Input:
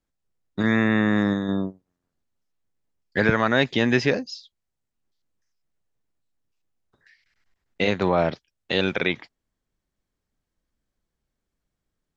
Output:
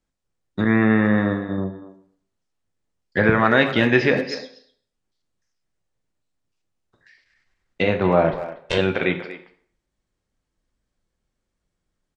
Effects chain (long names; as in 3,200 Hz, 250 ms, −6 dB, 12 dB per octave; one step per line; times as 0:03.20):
0:08.33–0:08.78: lower of the sound and its delayed copy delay 1.9 ms
treble cut that deepens with the level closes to 2,400 Hz, closed at −21 dBFS
0:00.64–0:01.58: downward expander −19 dBFS
0:03.45–0:04.35: high-shelf EQ 2,100 Hz +7.5 dB
convolution reverb RT60 0.55 s, pre-delay 3 ms, DRR 6 dB
downsampling to 22,050 Hz
far-end echo of a speakerphone 240 ms, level −13 dB
level +2 dB